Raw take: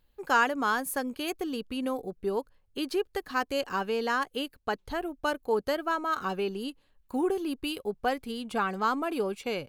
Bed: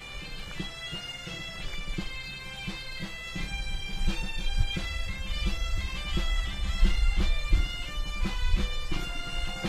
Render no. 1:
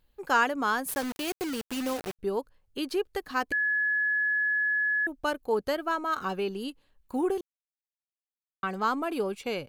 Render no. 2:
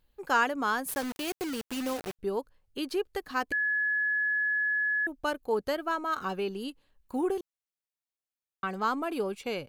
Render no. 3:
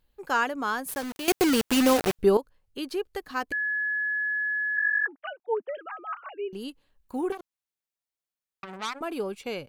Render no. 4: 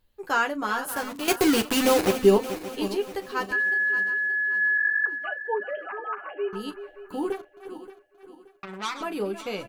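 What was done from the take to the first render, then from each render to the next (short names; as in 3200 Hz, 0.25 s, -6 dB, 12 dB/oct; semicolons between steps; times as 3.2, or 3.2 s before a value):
0.88–2.19 requantised 6-bit, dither none; 3.52–5.07 bleep 1700 Hz -23.5 dBFS; 7.41–8.63 mute
gain -1.5 dB
1.28–2.37 gain +12 dB; 4.77–6.53 sine-wave speech; 7.32–9.01 core saturation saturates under 3500 Hz
regenerating reverse delay 0.288 s, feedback 61%, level -11 dB; early reflections 10 ms -4 dB, 39 ms -14.5 dB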